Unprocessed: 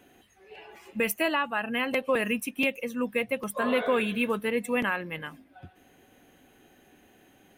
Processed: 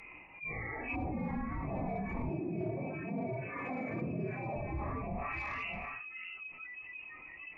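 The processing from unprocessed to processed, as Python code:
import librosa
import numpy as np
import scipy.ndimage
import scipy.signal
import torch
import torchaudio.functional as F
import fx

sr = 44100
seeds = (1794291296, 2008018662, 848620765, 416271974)

y = fx.phase_scramble(x, sr, seeds[0], window_ms=200)
y = fx.peak_eq(y, sr, hz=1300.0, db=-13.0, octaves=0.54)
y = fx.noise_reduce_blind(y, sr, reduce_db=29)
y = fx.low_shelf(y, sr, hz=230.0, db=-11.5)
y = fx.freq_invert(y, sr, carrier_hz=2800)
y = 10.0 ** (-26.5 / 20.0) * np.tanh(y / 10.0 ** (-26.5 / 20.0))
y = y + 10.0 ** (-16.5 / 20.0) * np.pad(y, (int(623 * sr / 1000.0), 0))[:len(y)]
y = fx.env_lowpass_down(y, sr, base_hz=540.0, full_db=-35.0)
y = fx.highpass(y, sr, hz=130.0, slope=24, at=(2.29, 4.56))
y = fx.env_flatten(y, sr, amount_pct=70)
y = F.gain(torch.from_numpy(y), 1.0).numpy()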